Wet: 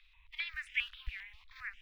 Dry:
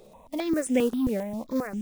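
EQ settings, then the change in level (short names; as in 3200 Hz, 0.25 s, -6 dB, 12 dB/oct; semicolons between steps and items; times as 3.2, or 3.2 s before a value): inverse Chebyshev band-stop 220–580 Hz, stop band 80 dB; air absorption 370 m; three-band isolator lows -14 dB, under 210 Hz, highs -13 dB, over 3400 Hz; +13.0 dB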